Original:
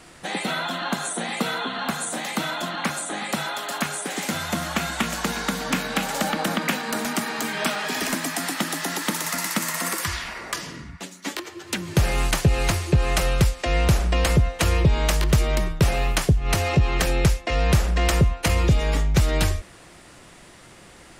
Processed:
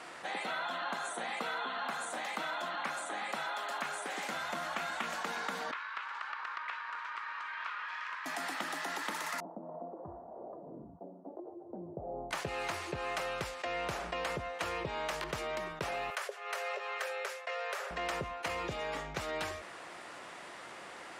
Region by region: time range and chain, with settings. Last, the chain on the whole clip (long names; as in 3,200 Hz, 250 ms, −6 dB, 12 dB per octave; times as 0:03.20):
0:05.71–0:08.26: Butterworth high-pass 930 Hz 96 dB per octave + head-to-tape spacing loss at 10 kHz 34 dB + highs frequency-modulated by the lows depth 0.12 ms
0:09.40–0:12.31: elliptic low-pass filter 710 Hz, stop band 70 dB + amplitude tremolo 2.9 Hz, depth 52%
0:16.10–0:17.91: Chebyshev high-pass with heavy ripple 390 Hz, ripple 6 dB + high-shelf EQ 7,200 Hz +8 dB
whole clip: high-pass filter 920 Hz 12 dB per octave; spectral tilt −4.5 dB per octave; envelope flattener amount 50%; level −8 dB